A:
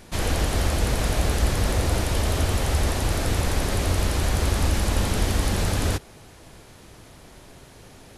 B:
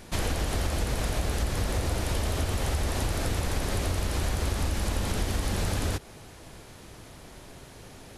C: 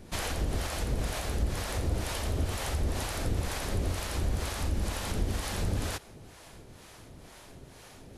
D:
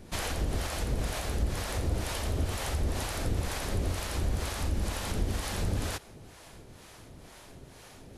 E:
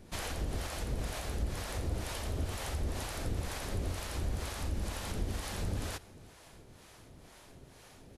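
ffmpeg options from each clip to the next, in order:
-af "acompressor=threshold=0.0631:ratio=6"
-filter_complex "[0:a]acrossover=split=550[s0][s1];[s0]aeval=exprs='val(0)*(1-0.7/2+0.7/2*cos(2*PI*2.1*n/s))':c=same[s2];[s1]aeval=exprs='val(0)*(1-0.7/2-0.7/2*cos(2*PI*2.1*n/s))':c=same[s3];[s2][s3]amix=inputs=2:normalize=0"
-af anull
-af "aecho=1:1:358:0.0668,volume=0.562"

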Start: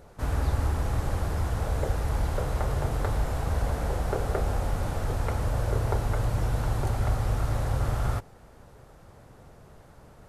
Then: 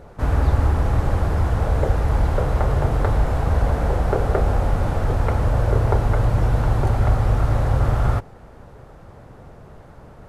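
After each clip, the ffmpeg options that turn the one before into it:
-af "highshelf=f=3800:g=-12,volume=2.66"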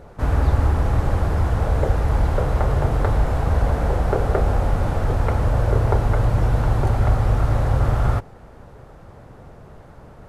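-af anull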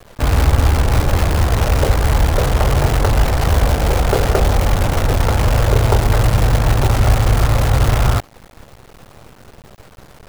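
-af "acrusher=bits=5:dc=4:mix=0:aa=0.000001,volume=1.68"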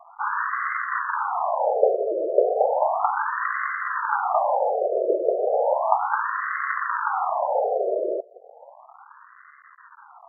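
-af "afftfilt=real='re*between(b*sr/1024,480*pow(1500/480,0.5+0.5*sin(2*PI*0.34*pts/sr))/1.41,480*pow(1500/480,0.5+0.5*sin(2*PI*0.34*pts/sr))*1.41)':imag='im*between(b*sr/1024,480*pow(1500/480,0.5+0.5*sin(2*PI*0.34*pts/sr))/1.41,480*pow(1500/480,0.5+0.5*sin(2*PI*0.34*pts/sr))*1.41)':win_size=1024:overlap=0.75,volume=1.5"

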